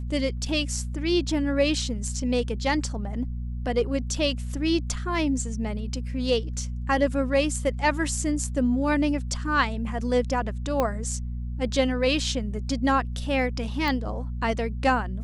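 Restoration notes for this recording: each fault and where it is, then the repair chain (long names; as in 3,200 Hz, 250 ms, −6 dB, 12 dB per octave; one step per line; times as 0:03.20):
mains hum 60 Hz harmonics 4 −31 dBFS
0:10.80: click −11 dBFS
0:13.88: click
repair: click removal
hum removal 60 Hz, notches 4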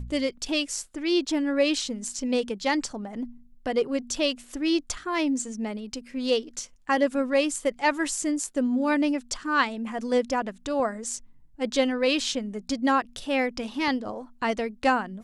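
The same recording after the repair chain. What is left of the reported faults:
0:10.80: click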